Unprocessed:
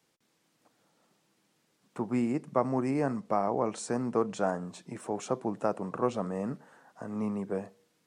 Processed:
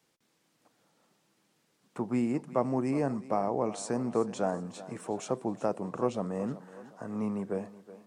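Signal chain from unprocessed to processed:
dynamic equaliser 1,400 Hz, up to −5 dB, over −43 dBFS, Q 1.3
on a send: feedback echo with a high-pass in the loop 372 ms, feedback 45%, high-pass 200 Hz, level −15.5 dB

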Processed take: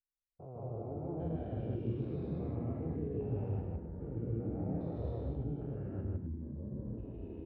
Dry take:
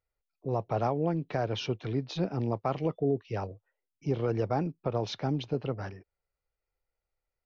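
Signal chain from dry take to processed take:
spectrum averaged block by block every 400 ms
low-pass filter 3,500 Hz 12 dB per octave
reversed playback
downward compressor, threshold −44 dBFS, peak gain reduction 16 dB
reversed playback
delay with pitch and tempo change per echo 186 ms, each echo −6 semitones, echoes 2
on a send: loudspeakers that aren't time-aligned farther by 53 metres 0 dB, 88 metres −7 dB
on the sum: every bin expanded away from the loudest bin 1.5 to 1
level +4 dB

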